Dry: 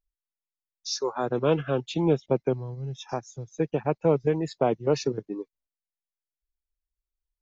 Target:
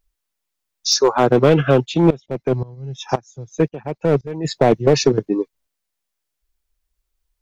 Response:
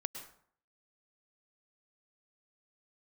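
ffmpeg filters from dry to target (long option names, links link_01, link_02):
-filter_complex "[0:a]aeval=exprs='clip(val(0),-1,0.0891)':channel_layout=same,alimiter=level_in=15dB:limit=-1dB:release=50:level=0:latency=1,asplit=3[link_01][link_02][link_03];[link_01]afade=type=out:start_time=1.84:duration=0.02[link_04];[link_02]aeval=exprs='val(0)*pow(10,-19*if(lt(mod(-1.9*n/s,1),2*abs(-1.9)/1000),1-mod(-1.9*n/s,1)/(2*abs(-1.9)/1000),(mod(-1.9*n/s,1)-2*abs(-1.9)/1000)/(1-2*abs(-1.9)/1000))/20)':channel_layout=same,afade=type=in:start_time=1.84:duration=0.02,afade=type=out:start_time=4.44:duration=0.02[link_05];[link_03]afade=type=in:start_time=4.44:duration=0.02[link_06];[link_04][link_05][link_06]amix=inputs=3:normalize=0,volume=-1dB"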